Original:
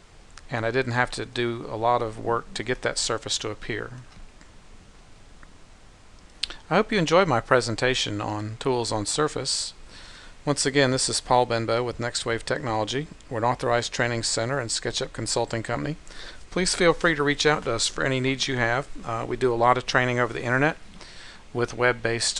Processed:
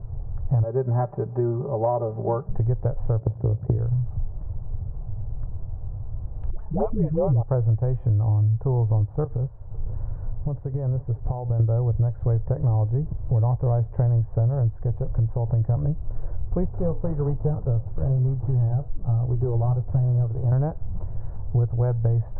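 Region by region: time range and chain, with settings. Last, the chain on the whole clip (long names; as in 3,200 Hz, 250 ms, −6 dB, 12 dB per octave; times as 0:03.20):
0:00.63–0:02.49: high-pass filter 180 Hz + high-frequency loss of the air 320 metres + comb filter 5.1 ms, depth 94%
0:03.20–0:03.78: high-pass filter 120 Hz 24 dB per octave + tilt shelving filter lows +9.5 dB, about 1,100 Hz + amplitude modulation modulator 58 Hz, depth 80%
0:06.50–0:07.43: all-pass dispersion highs, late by 100 ms, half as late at 540 Hz + flanger swept by the level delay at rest 6.3 ms, full sweep at −17 dBFS
0:09.24–0:11.60: downward compressor 5 to 1, threshold −34 dBFS + single-tap delay 502 ms −18.5 dB
0:14.75–0:15.61: Butterworth low-pass 4,100 Hz + downward compressor 2 to 1, threshold −33 dBFS
0:16.65–0:20.52: variable-slope delta modulation 16 kbit/s + flanger 1.2 Hz, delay 6.5 ms, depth 7.3 ms, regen −74% + high-frequency loss of the air 300 metres
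whole clip: inverse Chebyshev low-pass filter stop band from 4,600 Hz, stop band 80 dB; low shelf with overshoot 160 Hz +13 dB, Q 3; downward compressor 6 to 1, threshold −25 dBFS; level +6 dB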